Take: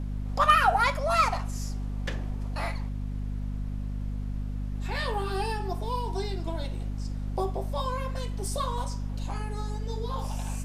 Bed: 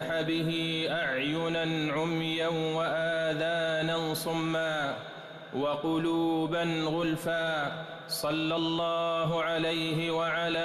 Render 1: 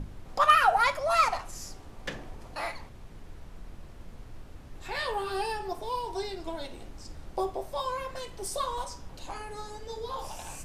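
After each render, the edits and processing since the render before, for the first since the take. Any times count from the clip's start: notches 50/100/150/200/250 Hz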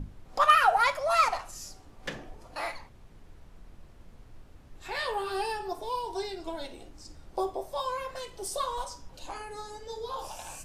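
noise print and reduce 6 dB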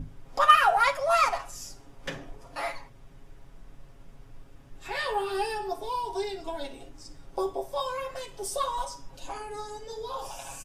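notch 4200 Hz, Q 13; comb 7.3 ms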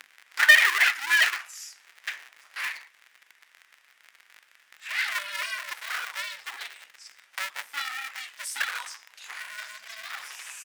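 cycle switcher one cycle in 2, inverted; resonant high-pass 1900 Hz, resonance Q 2.4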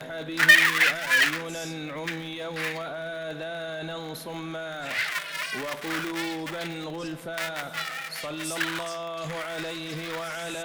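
add bed -5 dB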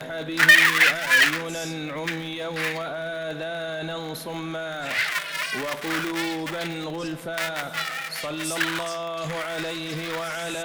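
gain +3.5 dB; limiter -3 dBFS, peak gain reduction 3 dB

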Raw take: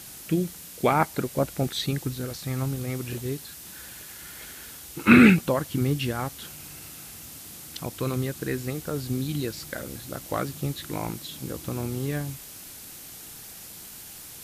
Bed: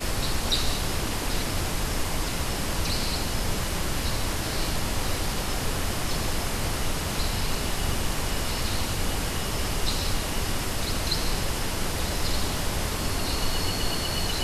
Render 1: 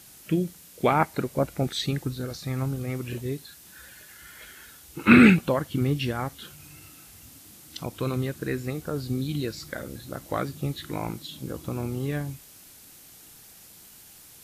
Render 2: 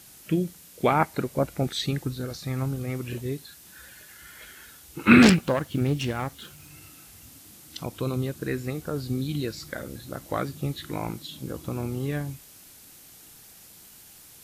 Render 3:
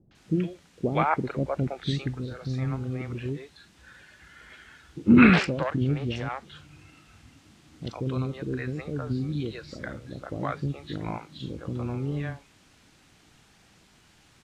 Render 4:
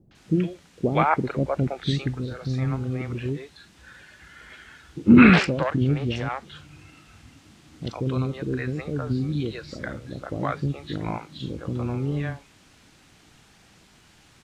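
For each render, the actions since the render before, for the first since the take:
noise print and reduce 7 dB
5.22–6.73 self-modulated delay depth 0.39 ms; 8–8.45 bell 1800 Hz -12.5 dB -> -2 dB
air absorption 130 m; three bands offset in time lows, mids, highs 0.11/0.15 s, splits 500/4900 Hz
gain +3.5 dB; limiter -1 dBFS, peak gain reduction 2 dB

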